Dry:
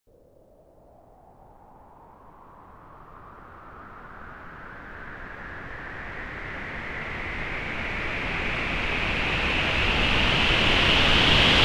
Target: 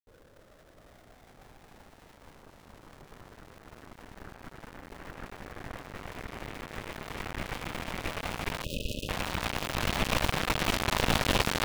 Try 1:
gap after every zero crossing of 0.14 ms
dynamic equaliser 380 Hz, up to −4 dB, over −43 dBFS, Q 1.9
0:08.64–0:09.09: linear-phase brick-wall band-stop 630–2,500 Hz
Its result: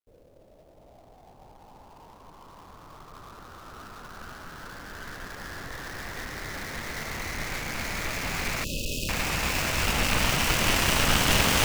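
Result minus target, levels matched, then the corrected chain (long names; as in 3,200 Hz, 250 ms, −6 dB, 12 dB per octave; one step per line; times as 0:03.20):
gap after every zero crossing: distortion −7 dB
gap after every zero crossing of 0.51 ms
dynamic equaliser 380 Hz, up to −4 dB, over −43 dBFS, Q 1.9
0:08.64–0:09.09: linear-phase brick-wall band-stop 630–2,500 Hz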